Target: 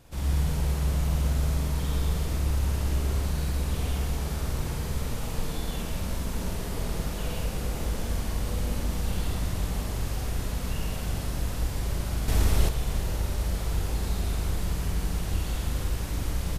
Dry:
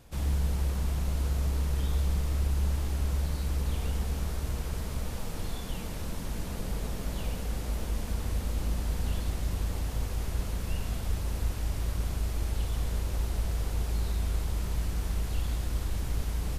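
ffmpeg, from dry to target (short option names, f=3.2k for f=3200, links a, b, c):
-filter_complex "[0:a]asplit=2[a][b];[b]adelay=47,volume=-2.5dB[c];[a][c]amix=inputs=2:normalize=0,asplit=2[d][e];[e]aecho=0:1:113.7|180.8:0.631|0.631[f];[d][f]amix=inputs=2:normalize=0,asettb=1/sr,asplit=3[g][h][i];[g]atrim=end=12.284[j];[h]atrim=start=12.28:end=12.69,asetpts=PTS-STARTPTS,afade=t=in:d=0.004:c=qsin,afade=t=out:st=0.406:d=0.004:c=qsin,acontrast=69[k];[i]atrim=start=12.686[l];[j][k]acrossfade=d=0.004:c1=hsin:c2=qsin[m];[m][l]acrossfade=d=0.004:c1=qsin:c2=hsin"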